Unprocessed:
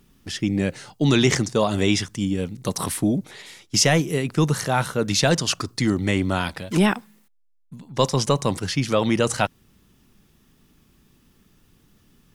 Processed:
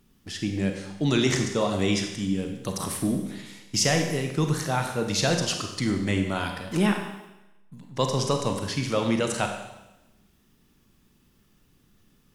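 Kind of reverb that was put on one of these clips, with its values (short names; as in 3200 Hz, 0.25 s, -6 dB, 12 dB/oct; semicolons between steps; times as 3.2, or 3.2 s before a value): Schroeder reverb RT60 0.98 s, combs from 31 ms, DRR 4 dB; gain -5.5 dB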